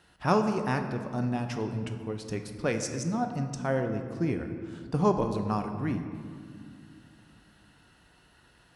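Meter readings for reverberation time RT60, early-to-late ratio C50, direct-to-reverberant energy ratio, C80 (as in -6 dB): 2.2 s, 7.5 dB, 5.5 dB, 8.5 dB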